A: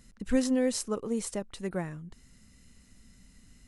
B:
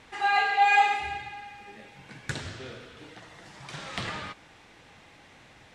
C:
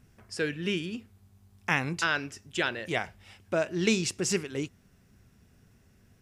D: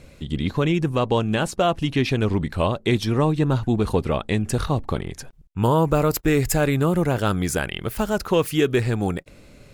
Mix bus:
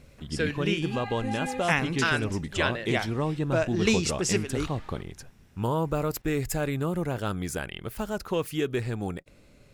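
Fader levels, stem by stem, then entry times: −10.5, −16.5, +1.5, −8.5 decibels; 0.90, 0.70, 0.00, 0.00 seconds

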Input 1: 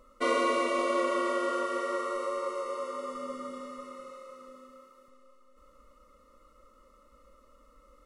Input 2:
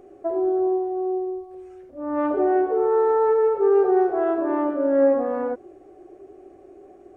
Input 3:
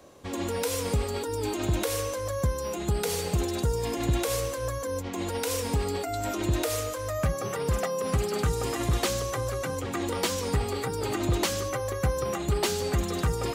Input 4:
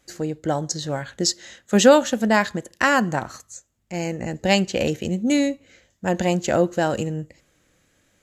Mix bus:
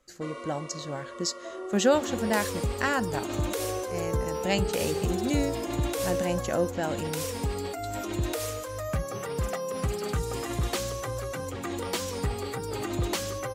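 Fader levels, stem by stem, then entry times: −13.5, −16.0, −3.0, −9.0 decibels; 0.00, 1.20, 1.70, 0.00 seconds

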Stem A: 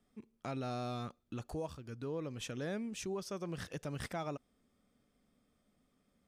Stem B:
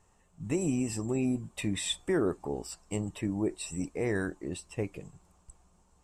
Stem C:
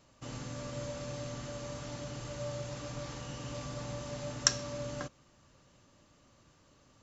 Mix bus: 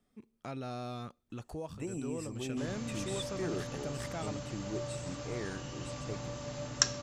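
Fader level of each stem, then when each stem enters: −1.0, −9.5, −0.5 decibels; 0.00, 1.30, 2.35 seconds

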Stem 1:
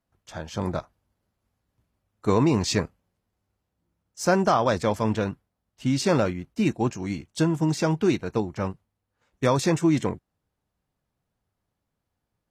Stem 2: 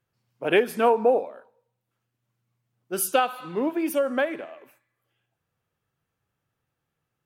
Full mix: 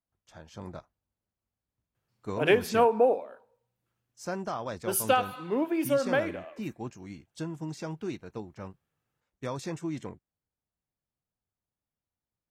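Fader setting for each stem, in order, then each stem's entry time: −13.5, −2.5 decibels; 0.00, 1.95 seconds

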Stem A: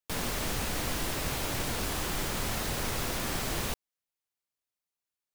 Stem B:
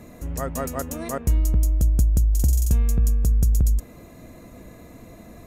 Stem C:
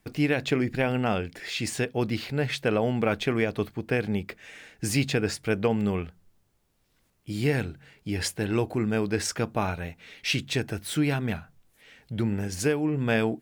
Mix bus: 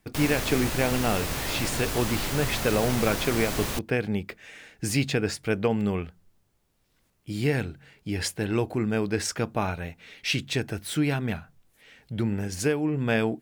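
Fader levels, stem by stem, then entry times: +2.0 dB, muted, 0.0 dB; 0.05 s, muted, 0.00 s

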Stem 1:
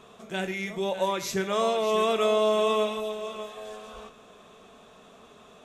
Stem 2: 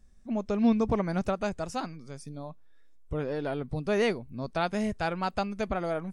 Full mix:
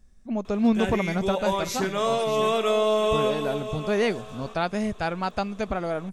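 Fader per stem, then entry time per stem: +1.0, +2.5 decibels; 0.45, 0.00 seconds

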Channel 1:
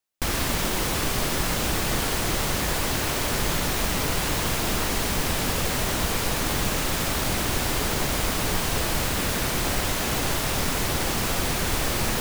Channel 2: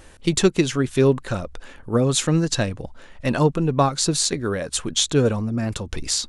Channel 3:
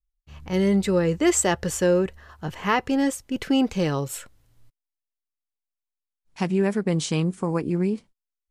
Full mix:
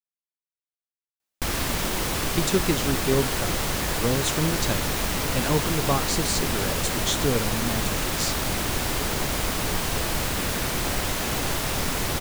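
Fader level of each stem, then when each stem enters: −1.0 dB, −6.5 dB, muted; 1.20 s, 2.10 s, muted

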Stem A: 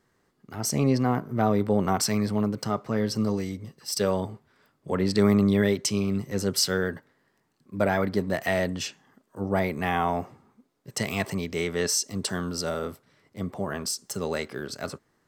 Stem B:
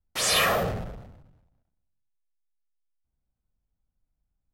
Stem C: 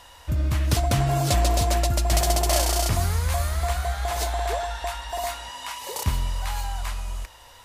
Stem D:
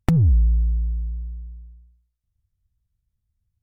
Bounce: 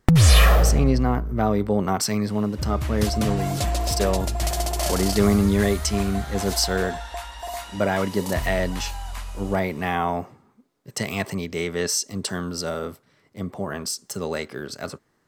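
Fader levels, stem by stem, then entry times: +1.5, +2.0, −3.5, +2.0 decibels; 0.00, 0.00, 2.30, 0.00 seconds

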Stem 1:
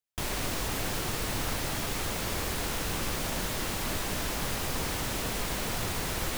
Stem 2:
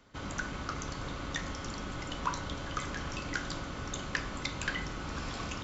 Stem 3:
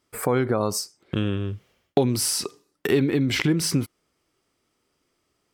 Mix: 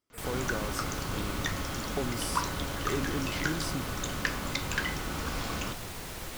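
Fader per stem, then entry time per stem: −8.0, +3.0, −13.5 decibels; 0.00, 0.10, 0.00 seconds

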